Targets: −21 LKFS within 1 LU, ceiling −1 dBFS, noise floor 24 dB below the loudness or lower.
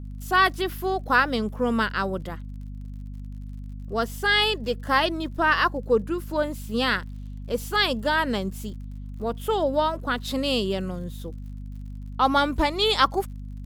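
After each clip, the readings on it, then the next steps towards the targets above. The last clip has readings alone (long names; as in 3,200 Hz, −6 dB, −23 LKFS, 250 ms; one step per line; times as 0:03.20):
crackle rate 40 per second; mains hum 50 Hz; hum harmonics up to 250 Hz; level of the hum −33 dBFS; integrated loudness −24.0 LKFS; sample peak −6.0 dBFS; target loudness −21.0 LKFS
→ click removal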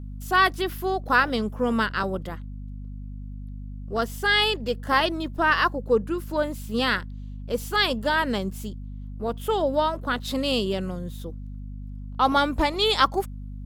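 crackle rate 0.81 per second; mains hum 50 Hz; hum harmonics up to 250 Hz; level of the hum −33 dBFS
→ hum removal 50 Hz, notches 5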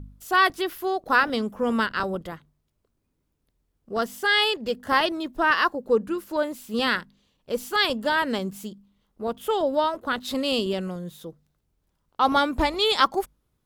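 mains hum none found; integrated loudness −24.5 LKFS; sample peak −6.5 dBFS; target loudness −21.0 LKFS
→ level +3.5 dB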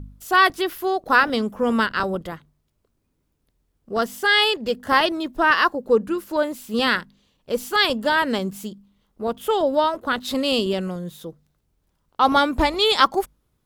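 integrated loudness −21.0 LKFS; sample peak −3.0 dBFS; background noise floor −71 dBFS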